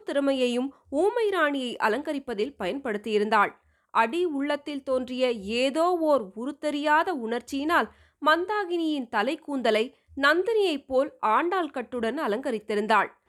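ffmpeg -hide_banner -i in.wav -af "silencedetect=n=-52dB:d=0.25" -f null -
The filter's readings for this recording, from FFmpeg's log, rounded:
silence_start: 3.57
silence_end: 3.94 | silence_duration: 0.37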